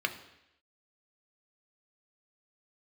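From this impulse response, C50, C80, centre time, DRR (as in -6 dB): 12.0 dB, 14.5 dB, 11 ms, 5.5 dB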